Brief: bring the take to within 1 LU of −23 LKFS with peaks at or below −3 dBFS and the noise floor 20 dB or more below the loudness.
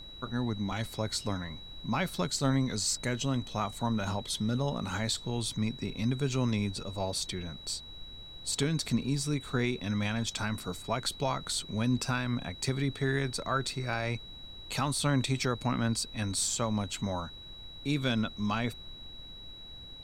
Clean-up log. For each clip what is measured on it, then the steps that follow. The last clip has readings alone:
interfering tone 3,900 Hz; level of the tone −46 dBFS; background noise floor −47 dBFS; target noise floor −52 dBFS; integrated loudness −32.0 LKFS; sample peak −16.5 dBFS; target loudness −23.0 LKFS
→ notch filter 3,900 Hz, Q 30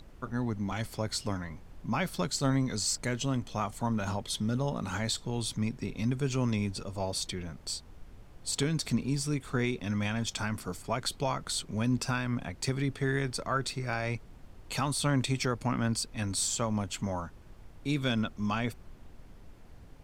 interfering tone none found; background noise floor −52 dBFS; target noise floor −53 dBFS
→ noise reduction from a noise print 6 dB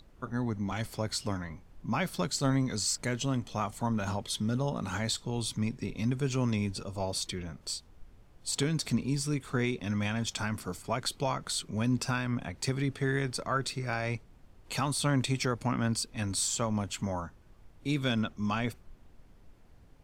background noise floor −58 dBFS; integrated loudness −32.5 LKFS; sample peak −17.0 dBFS; target loudness −23.0 LKFS
→ level +9.5 dB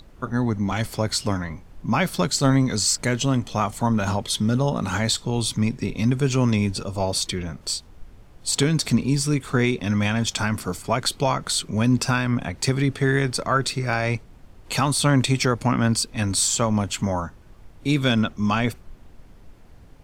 integrated loudness −23.0 LKFS; sample peak −7.5 dBFS; background noise floor −48 dBFS

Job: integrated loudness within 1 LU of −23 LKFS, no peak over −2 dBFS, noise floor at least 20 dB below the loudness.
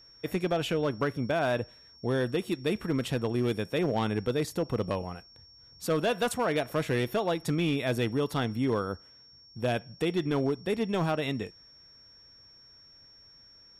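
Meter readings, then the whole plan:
share of clipped samples 1.1%; peaks flattened at −21.0 dBFS; interfering tone 5,500 Hz; level of the tone −53 dBFS; integrated loudness −30.0 LKFS; sample peak −21.0 dBFS; target loudness −23.0 LKFS
→ clipped peaks rebuilt −21 dBFS
notch filter 5,500 Hz, Q 30
level +7 dB

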